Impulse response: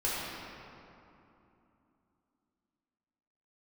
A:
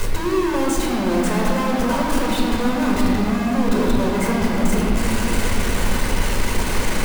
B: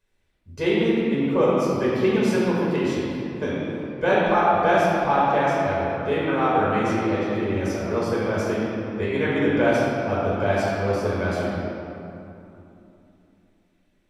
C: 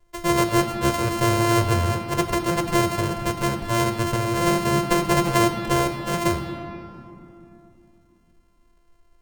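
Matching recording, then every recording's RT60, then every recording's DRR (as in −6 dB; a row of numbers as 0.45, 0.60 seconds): B; 2.9, 2.9, 2.9 seconds; −2.5, −8.0, 6.0 decibels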